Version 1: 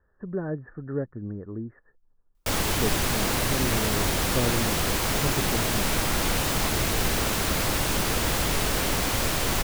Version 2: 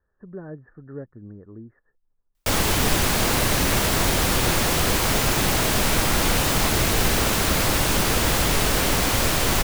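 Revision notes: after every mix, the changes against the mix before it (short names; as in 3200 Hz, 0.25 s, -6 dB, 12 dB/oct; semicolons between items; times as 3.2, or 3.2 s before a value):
speech -6.5 dB; background +4.5 dB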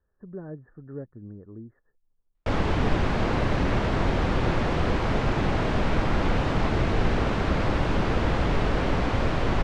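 master: add tape spacing loss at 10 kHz 37 dB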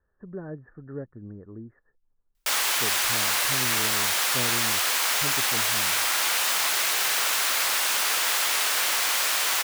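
background: add HPF 1100 Hz 12 dB/oct; master: remove tape spacing loss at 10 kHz 37 dB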